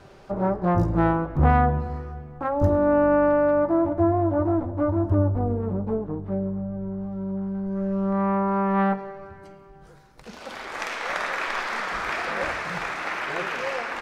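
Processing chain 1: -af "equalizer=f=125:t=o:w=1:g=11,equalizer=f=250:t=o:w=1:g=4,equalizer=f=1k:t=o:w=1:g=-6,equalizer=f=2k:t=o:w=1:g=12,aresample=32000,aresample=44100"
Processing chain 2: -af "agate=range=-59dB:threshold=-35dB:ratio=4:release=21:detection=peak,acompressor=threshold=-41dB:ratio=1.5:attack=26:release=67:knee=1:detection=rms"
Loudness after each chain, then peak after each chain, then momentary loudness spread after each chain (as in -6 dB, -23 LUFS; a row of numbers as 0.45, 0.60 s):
-19.5, -31.5 LUFS; -3.0, -15.0 dBFS; 10, 8 LU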